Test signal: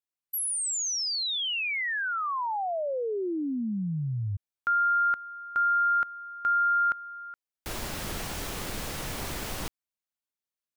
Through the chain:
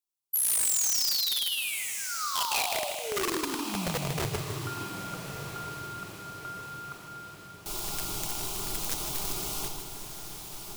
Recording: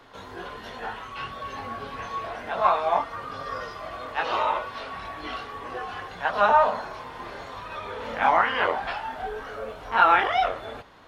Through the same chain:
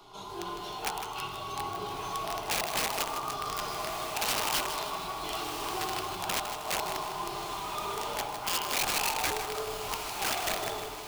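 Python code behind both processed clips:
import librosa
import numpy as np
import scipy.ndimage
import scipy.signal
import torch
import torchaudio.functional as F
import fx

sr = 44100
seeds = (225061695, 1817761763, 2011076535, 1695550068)

y = fx.over_compress(x, sr, threshold_db=-27.0, ratio=-0.5)
y = fx.peak_eq(y, sr, hz=150.0, db=-3.5, octaves=0.21)
y = fx.fixed_phaser(y, sr, hz=350.0, stages=8)
y = fx.room_shoebox(y, sr, seeds[0], volume_m3=1500.0, walls='mixed', distance_m=1.3)
y = (np.mod(10.0 ** (23.0 / 20.0) * y + 1.0, 2.0) - 1.0) / 10.0 ** (23.0 / 20.0)
y = fx.high_shelf(y, sr, hz=2700.0, db=6.0)
y = fx.echo_diffused(y, sr, ms=1291, feedback_pct=49, wet_db=-8.5)
y = fx.echo_crushed(y, sr, ms=156, feedback_pct=55, bits=7, wet_db=-8.5)
y = y * 10.0 ** (-4.0 / 20.0)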